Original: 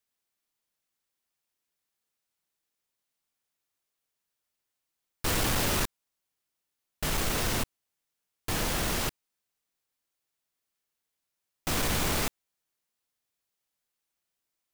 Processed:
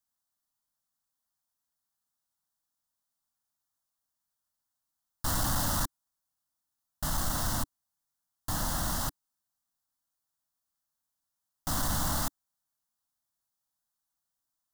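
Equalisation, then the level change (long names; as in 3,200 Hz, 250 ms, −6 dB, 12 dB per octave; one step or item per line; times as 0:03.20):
parametric band 290 Hz +4.5 dB 0.47 octaves
phaser with its sweep stopped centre 1,000 Hz, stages 4
0.0 dB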